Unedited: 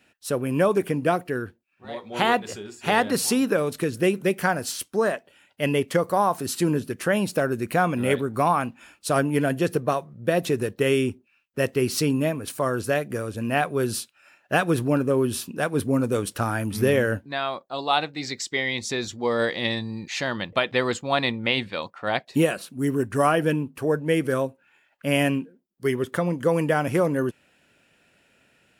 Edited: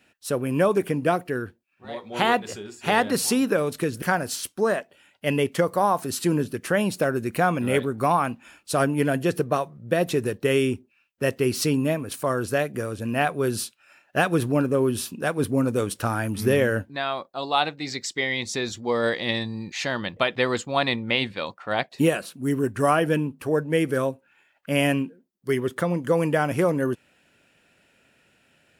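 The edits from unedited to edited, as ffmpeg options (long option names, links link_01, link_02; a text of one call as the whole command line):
ffmpeg -i in.wav -filter_complex "[0:a]asplit=2[link_01][link_02];[link_01]atrim=end=4.022[link_03];[link_02]atrim=start=4.378[link_04];[link_03][link_04]acrossfade=duration=0.004:curve1=hsin:curve2=hsin" out.wav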